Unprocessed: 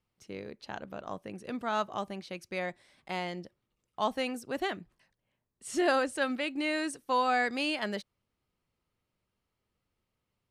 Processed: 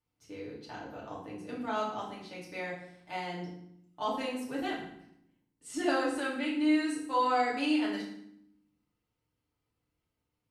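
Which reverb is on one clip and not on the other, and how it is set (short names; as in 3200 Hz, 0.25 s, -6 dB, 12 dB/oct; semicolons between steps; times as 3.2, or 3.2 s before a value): FDN reverb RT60 0.72 s, low-frequency decay 1.6×, high-frequency decay 0.85×, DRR -7 dB; gain -10 dB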